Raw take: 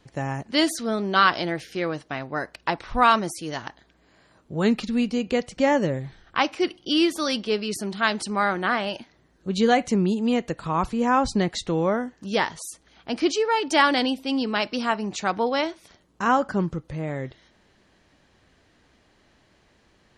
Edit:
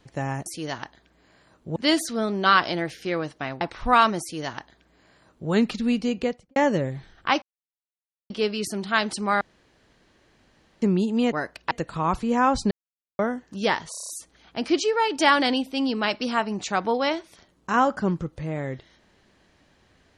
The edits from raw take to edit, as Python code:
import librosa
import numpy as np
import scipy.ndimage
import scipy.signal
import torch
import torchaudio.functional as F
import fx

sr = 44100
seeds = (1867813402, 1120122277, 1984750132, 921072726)

y = fx.studio_fade_out(x, sr, start_s=5.23, length_s=0.42)
y = fx.edit(y, sr, fx.move(start_s=2.31, length_s=0.39, to_s=10.41),
    fx.duplicate(start_s=3.3, length_s=1.3, to_s=0.46),
    fx.silence(start_s=6.51, length_s=0.88),
    fx.room_tone_fill(start_s=8.5, length_s=1.41),
    fx.silence(start_s=11.41, length_s=0.48),
    fx.stutter(start_s=12.61, slice_s=0.03, count=7), tone=tone)